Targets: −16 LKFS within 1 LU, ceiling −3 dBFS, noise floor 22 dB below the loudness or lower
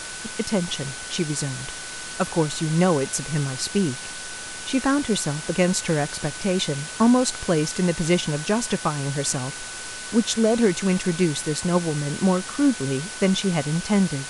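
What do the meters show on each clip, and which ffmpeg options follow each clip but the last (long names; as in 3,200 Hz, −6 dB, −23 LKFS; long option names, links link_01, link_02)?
interfering tone 1,500 Hz; level of the tone −39 dBFS; background noise floor −35 dBFS; target noise floor −46 dBFS; integrated loudness −23.5 LKFS; sample peak −5.0 dBFS; target loudness −16.0 LKFS
→ -af "bandreject=frequency=1500:width=30"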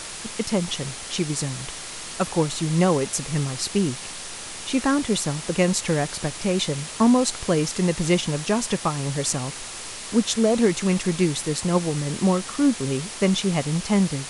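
interfering tone none found; background noise floor −36 dBFS; target noise floor −46 dBFS
→ -af "afftdn=noise_reduction=10:noise_floor=-36"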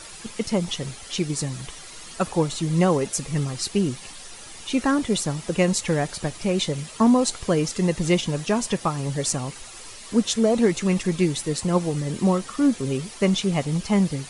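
background noise floor −41 dBFS; target noise floor −46 dBFS
→ -af "afftdn=noise_reduction=6:noise_floor=-41"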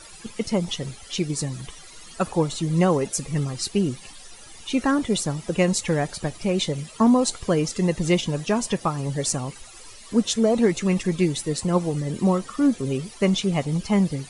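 background noise floor −44 dBFS; target noise floor −46 dBFS
→ -af "afftdn=noise_reduction=6:noise_floor=-44"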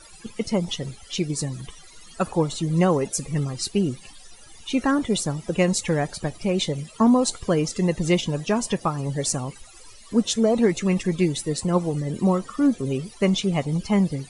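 background noise floor −47 dBFS; integrated loudness −23.5 LKFS; sample peak −5.5 dBFS; target loudness −16.0 LKFS
→ -af "volume=7.5dB,alimiter=limit=-3dB:level=0:latency=1"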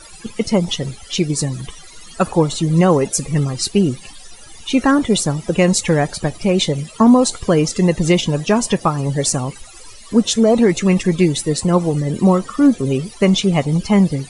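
integrated loudness −16.5 LKFS; sample peak −3.0 dBFS; background noise floor −39 dBFS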